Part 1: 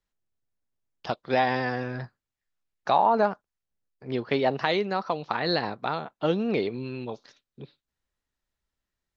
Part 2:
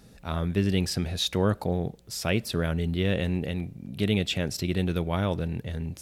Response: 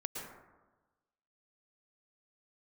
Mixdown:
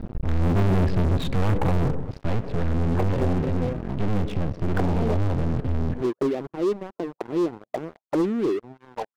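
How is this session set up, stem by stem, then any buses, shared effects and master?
−18.0 dB, 1.90 s, no send, reverb reduction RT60 0.89 s; high-pass filter 110 Hz 6 dB per octave; envelope-controlled low-pass 340–1,800 Hz down, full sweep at −26 dBFS
0:01.83 −7 dB → 0:02.38 −14.5 dB, 0.00 s, send −15 dB, spectral tilt −4 dB per octave; half-wave rectification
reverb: on, RT60 1.2 s, pre-delay 103 ms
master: Bessel low-pass filter 2,300 Hz, order 4; leveller curve on the samples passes 5

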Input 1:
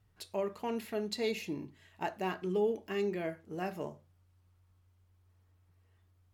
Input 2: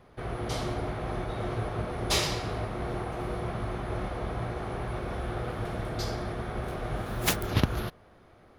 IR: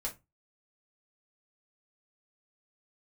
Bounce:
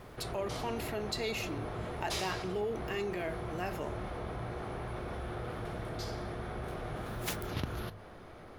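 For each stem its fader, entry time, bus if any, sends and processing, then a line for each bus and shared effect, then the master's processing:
0.0 dB, 0.00 s, no send, low-shelf EQ 470 Hz −10 dB
−13.0 dB, 0.00 s, send −16.5 dB, mains-hum notches 50/100 Hz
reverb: on, RT60 0.20 s, pre-delay 3 ms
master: envelope flattener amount 50%

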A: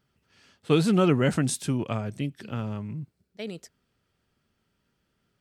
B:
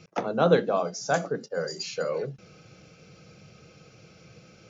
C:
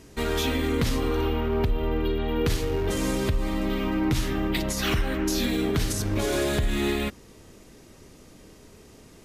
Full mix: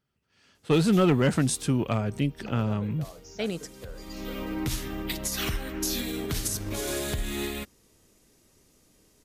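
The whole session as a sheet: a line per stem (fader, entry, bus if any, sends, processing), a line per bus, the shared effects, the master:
−7.5 dB, 0.00 s, no send, automatic gain control gain up to 13 dB
−13.0 dB, 2.30 s, no send, downward compressor, threshold −29 dBFS, peak gain reduction 14.5 dB
−5.0 dB, 0.55 s, no send, high-shelf EQ 4,900 Hz +11.5 dB; expander for the loud parts 1.5 to 1, over −38 dBFS; automatic ducking −17 dB, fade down 1.15 s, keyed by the first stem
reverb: not used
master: hard clipping −15 dBFS, distortion −20 dB

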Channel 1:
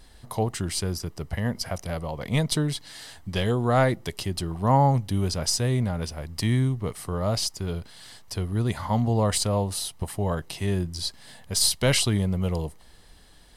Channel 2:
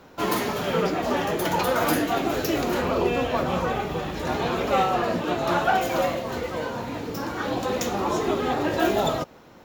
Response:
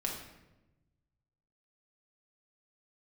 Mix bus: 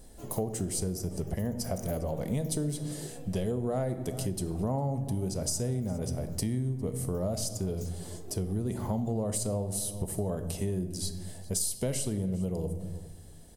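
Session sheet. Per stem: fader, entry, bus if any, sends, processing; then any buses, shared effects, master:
+0.5 dB, 0.00 s, send −7 dB, echo send −19.5 dB, low-shelf EQ 110 Hz −6 dB
−14.5 dB, 0.00 s, no send, no echo send, high-shelf EQ 4,300 Hz +12 dB; gate on every frequency bin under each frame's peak −25 dB strong; automatic ducking −9 dB, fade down 0.45 s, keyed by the first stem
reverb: on, RT60 1.0 s, pre-delay 5 ms
echo: single-tap delay 404 ms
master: flat-topped bell 2,100 Hz −13 dB 2.8 octaves; downward compressor 6 to 1, threshold −28 dBFS, peak gain reduction 13.5 dB

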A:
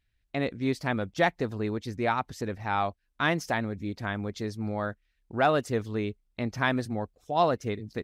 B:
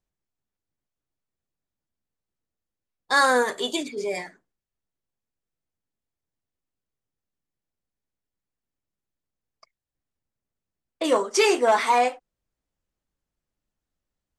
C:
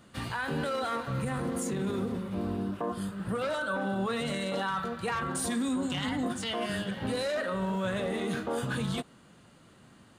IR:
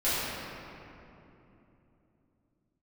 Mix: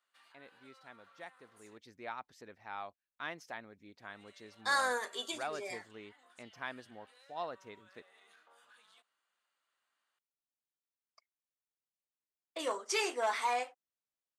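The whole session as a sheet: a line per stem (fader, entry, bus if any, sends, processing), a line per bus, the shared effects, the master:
0:01.56 −21.5 dB → 0:01.83 −12.5 dB, 0.00 s, no send, high-shelf EQ 5,300 Hz −7 dB
−10.0 dB, 1.55 s, no send, no processing
−18.0 dB, 0.00 s, muted 0:01.78–0:04.02, no send, high-pass filter 1,100 Hz 12 dB per octave; spectral tilt −2 dB per octave; brickwall limiter −35 dBFS, peak gain reduction 9 dB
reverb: not used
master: high-pass filter 810 Hz 6 dB per octave

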